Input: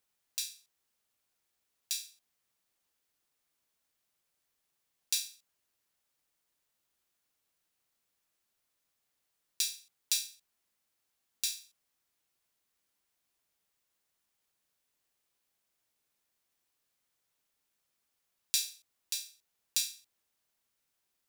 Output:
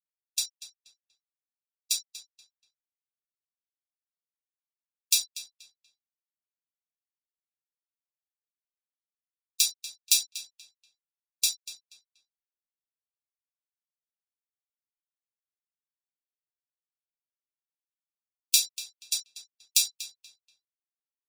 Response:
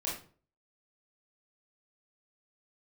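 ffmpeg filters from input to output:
-filter_complex "[0:a]afftfilt=real='re*gte(hypot(re,im),0.02)':imag='im*gte(hypot(re,im),0.02)':win_size=1024:overlap=0.75,highshelf=f=9.7k:g=2.5,bandreject=f=50:t=h:w=6,bandreject=f=100:t=h:w=6,bandreject=f=150:t=h:w=6,bandreject=f=200:t=h:w=6,bandreject=f=250:t=h:w=6,bandreject=f=300:t=h:w=6,bandreject=f=350:t=h:w=6,bandreject=f=400:t=h:w=6,asplit=2[a][b];[b]aeval=exprs='sgn(val(0))*max(abs(val(0))-0.00668,0)':c=same,volume=-4.5dB[c];[a][c]amix=inputs=2:normalize=0,asplit=2[d][e];[e]adelay=240,lowpass=f=4.3k:p=1,volume=-12dB,asplit=2[f][g];[g]adelay=240,lowpass=f=4.3k:p=1,volume=0.31,asplit=2[h][i];[i]adelay=240,lowpass=f=4.3k:p=1,volume=0.31[j];[d][f][h][j]amix=inputs=4:normalize=0,volume=4.5dB"

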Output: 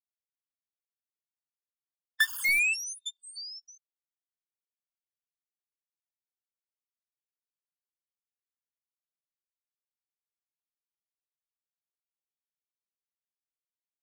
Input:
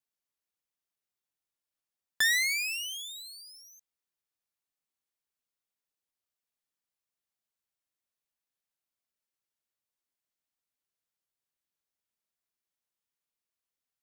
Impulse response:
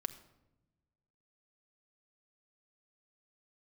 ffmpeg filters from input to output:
-filter_complex "[0:a]acrossover=split=2700[a][b];[b]acompressor=threshold=-38dB:ratio=4:attack=1:release=60[c];[a][c]amix=inputs=2:normalize=0,afftfilt=real='re*gte(hypot(re,im),0.0178)':imag='im*gte(hypot(re,im),0.0178)':win_size=1024:overlap=0.75,acrossover=split=180|1600[d][e][f];[d]dynaudnorm=f=370:g=7:m=6.5dB[g];[g][e][f]amix=inputs=3:normalize=0,lowshelf=f=570:t=q:w=3:g=6,asplit=2[h][i];[i]aeval=exprs='(mod(29.9*val(0)+1,2)-1)/29.9':c=same,volume=-6.5dB[j];[h][j]amix=inputs=2:normalize=0,afftfilt=real='re*gt(sin(2*PI*0.81*pts/sr)*(1-2*mod(floor(b*sr/1024/900),2)),0)':imag='im*gt(sin(2*PI*0.81*pts/sr)*(1-2*mod(floor(b*sr/1024/900),2)),0)':win_size=1024:overlap=0.75,volume=7.5dB"

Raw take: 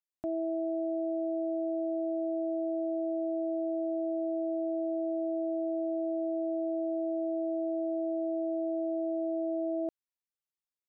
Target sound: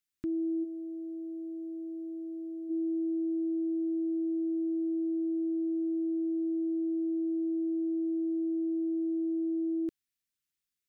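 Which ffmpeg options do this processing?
-filter_complex "[0:a]asplit=3[a][b][c];[a]afade=t=out:st=0.63:d=0.02[d];[b]equalizer=f=300:t=o:w=0.34:g=-12.5,afade=t=in:st=0.63:d=0.02,afade=t=out:st=2.69:d=0.02[e];[c]afade=t=in:st=2.69:d=0.02[f];[d][e][f]amix=inputs=3:normalize=0,asuperstop=centerf=720:order=4:qfactor=0.62,volume=6.5dB"

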